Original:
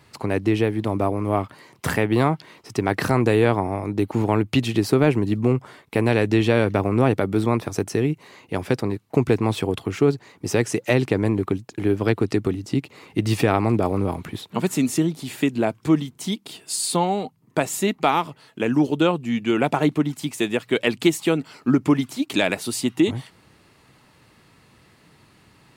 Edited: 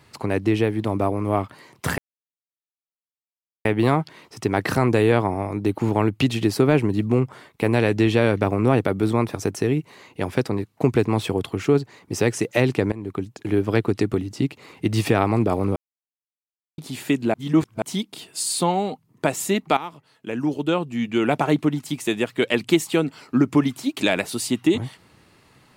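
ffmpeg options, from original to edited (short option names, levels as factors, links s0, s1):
-filter_complex "[0:a]asplit=8[s0][s1][s2][s3][s4][s5][s6][s7];[s0]atrim=end=1.98,asetpts=PTS-STARTPTS,afade=t=out:st=1.976:d=0.004:c=hsin,apad=pad_dur=1.67[s8];[s1]atrim=start=1.98:end=11.25,asetpts=PTS-STARTPTS,afade=t=in:d=0.004:c=hsin,afade=t=out:st=9.266:d=0.004:c=hsin:silence=0.105925[s9];[s2]atrim=start=11.25:end=14.09,asetpts=PTS-STARTPTS,afade=t=in:d=0.46:silence=0.105925,afade=t=out:st=2.836:d=0.004:c=hsin[s10];[s3]atrim=start=14.09:end=15.11,asetpts=PTS-STARTPTS,volume=0[s11];[s4]atrim=start=15.11:end=15.672,asetpts=PTS-STARTPTS,afade=t=in:d=0.004:c=hsin[s12];[s5]atrim=start=15.668:end=16.152,asetpts=PTS-STARTPTS,areverse[s13];[s6]atrim=start=16.148:end=18.1,asetpts=PTS-STARTPTS,afade=t=out:st=1.948:d=0.004:c=hsin:silence=0.211349[s14];[s7]atrim=start=18.1,asetpts=PTS-STARTPTS,afade=t=in:d=1.48:silence=0.211349[s15];[s8][s9][s10][s11][s12]concat=n=5:v=0:a=1[s16];[s16][s13]acrossfade=d=0.004:c1=hsin:c2=hsin[s17];[s14][s15]concat=n=2:v=0:a=1[s18];[s17][s18]acrossfade=d=0.004:c1=hsin:c2=hsin"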